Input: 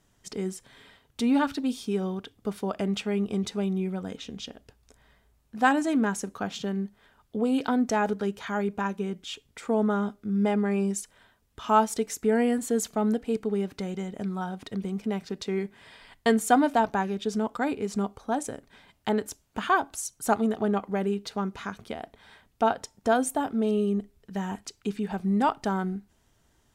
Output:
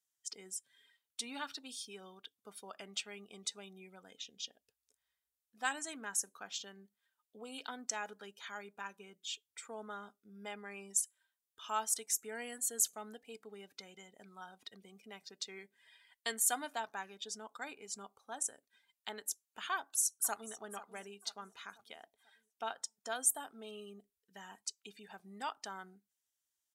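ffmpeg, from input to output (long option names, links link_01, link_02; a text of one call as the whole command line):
ffmpeg -i in.wav -filter_complex "[0:a]asplit=2[link_01][link_02];[link_02]afade=type=in:start_time=19.75:duration=0.01,afade=type=out:start_time=20.61:duration=0.01,aecho=0:1:490|980|1470|1960|2450:0.188365|0.0941825|0.0470912|0.0235456|0.0117728[link_03];[link_01][link_03]amix=inputs=2:normalize=0,afftdn=noise_reduction=16:noise_floor=-48,aderivative,volume=2dB" out.wav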